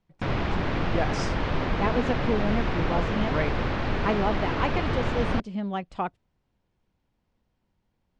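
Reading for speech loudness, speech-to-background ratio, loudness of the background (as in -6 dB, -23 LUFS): -30.5 LUFS, -2.0 dB, -28.5 LUFS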